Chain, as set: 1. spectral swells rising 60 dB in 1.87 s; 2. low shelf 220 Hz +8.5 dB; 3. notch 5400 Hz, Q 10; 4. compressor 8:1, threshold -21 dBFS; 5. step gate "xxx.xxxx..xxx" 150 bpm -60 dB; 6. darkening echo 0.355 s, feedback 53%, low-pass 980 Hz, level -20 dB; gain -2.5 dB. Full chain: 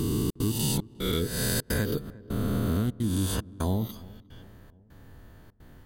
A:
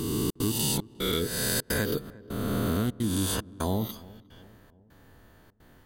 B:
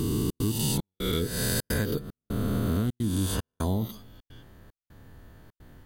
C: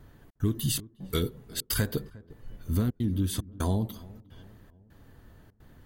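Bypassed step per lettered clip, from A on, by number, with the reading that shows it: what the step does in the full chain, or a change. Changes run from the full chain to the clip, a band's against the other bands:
2, 125 Hz band -5.5 dB; 6, echo-to-direct -24.0 dB to none; 1, momentary loudness spread change +10 LU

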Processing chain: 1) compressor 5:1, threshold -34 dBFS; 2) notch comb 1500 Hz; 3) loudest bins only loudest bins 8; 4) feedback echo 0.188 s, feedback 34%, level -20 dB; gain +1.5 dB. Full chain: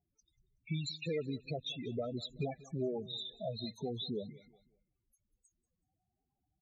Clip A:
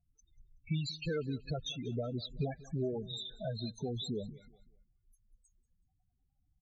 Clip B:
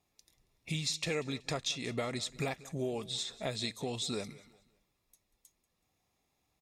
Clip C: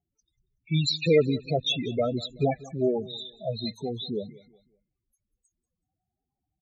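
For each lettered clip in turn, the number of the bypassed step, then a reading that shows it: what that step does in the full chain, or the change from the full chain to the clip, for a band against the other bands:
2, 125 Hz band +4.0 dB; 3, 2 kHz band +9.5 dB; 1, mean gain reduction 9.0 dB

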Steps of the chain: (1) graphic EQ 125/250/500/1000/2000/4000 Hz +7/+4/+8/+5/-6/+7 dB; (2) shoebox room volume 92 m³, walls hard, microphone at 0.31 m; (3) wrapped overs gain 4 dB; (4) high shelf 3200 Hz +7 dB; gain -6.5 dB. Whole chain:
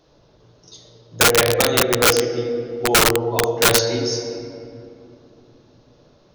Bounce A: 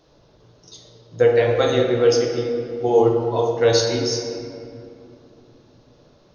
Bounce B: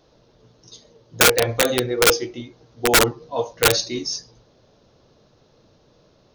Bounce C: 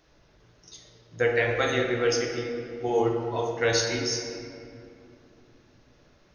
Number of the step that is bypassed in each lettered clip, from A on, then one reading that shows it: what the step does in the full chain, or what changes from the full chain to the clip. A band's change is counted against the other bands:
3, crest factor change -2.5 dB; 2, momentary loudness spread change +1 LU; 1, loudness change -9.5 LU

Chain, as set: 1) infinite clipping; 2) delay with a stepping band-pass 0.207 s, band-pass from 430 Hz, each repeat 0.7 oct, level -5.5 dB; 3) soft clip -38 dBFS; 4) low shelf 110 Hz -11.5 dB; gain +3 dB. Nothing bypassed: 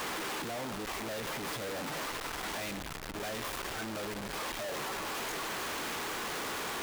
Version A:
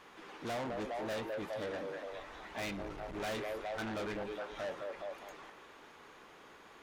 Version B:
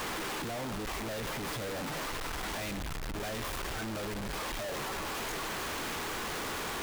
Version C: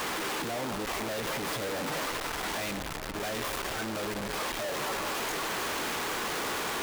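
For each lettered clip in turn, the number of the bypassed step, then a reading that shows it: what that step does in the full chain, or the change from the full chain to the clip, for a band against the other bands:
1, crest factor change +4.5 dB; 4, 125 Hz band +5.5 dB; 3, distortion -16 dB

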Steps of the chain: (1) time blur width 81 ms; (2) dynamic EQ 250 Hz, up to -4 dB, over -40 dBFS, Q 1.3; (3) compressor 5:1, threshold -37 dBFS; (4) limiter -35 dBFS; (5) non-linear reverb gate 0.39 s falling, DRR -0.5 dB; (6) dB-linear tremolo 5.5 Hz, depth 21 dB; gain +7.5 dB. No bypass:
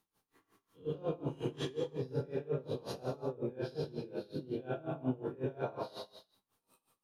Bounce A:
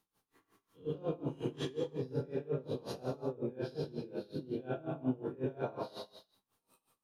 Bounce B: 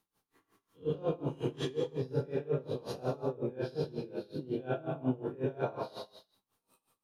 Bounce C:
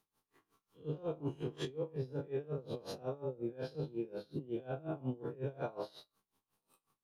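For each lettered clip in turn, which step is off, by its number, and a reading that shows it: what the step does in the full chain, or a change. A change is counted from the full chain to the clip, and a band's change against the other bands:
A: 2, 250 Hz band +2.0 dB; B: 4, mean gain reduction 2.5 dB; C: 5, crest factor change -3.5 dB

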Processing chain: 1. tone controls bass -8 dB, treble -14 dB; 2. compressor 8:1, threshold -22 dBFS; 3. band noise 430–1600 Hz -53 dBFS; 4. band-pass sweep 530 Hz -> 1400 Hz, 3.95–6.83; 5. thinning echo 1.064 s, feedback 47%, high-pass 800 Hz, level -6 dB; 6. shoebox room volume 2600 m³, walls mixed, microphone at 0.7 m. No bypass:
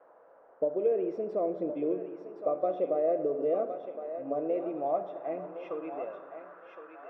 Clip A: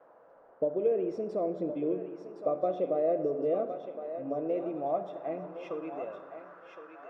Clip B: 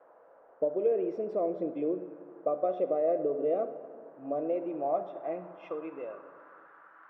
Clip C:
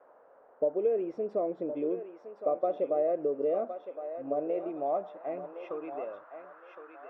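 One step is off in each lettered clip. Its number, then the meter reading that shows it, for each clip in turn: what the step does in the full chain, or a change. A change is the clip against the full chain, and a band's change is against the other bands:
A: 1, 125 Hz band +5.5 dB; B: 5, echo-to-direct -4.0 dB to -9.0 dB; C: 6, echo-to-direct -4.0 dB to -6.5 dB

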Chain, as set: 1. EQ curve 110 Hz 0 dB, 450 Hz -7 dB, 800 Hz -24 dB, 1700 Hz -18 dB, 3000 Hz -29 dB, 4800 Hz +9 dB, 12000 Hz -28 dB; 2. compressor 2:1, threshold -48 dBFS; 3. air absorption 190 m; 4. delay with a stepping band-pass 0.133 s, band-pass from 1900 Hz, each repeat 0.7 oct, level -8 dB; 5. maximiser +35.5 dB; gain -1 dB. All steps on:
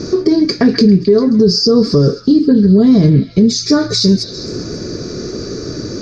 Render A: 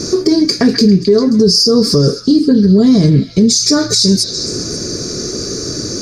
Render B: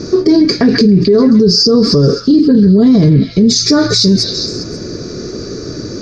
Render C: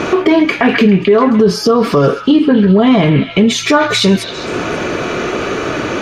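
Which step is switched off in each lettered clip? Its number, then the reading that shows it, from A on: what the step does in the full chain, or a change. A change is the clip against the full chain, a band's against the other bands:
3, 4 kHz band +5.0 dB; 2, mean gain reduction 7.0 dB; 1, 1 kHz band +14.5 dB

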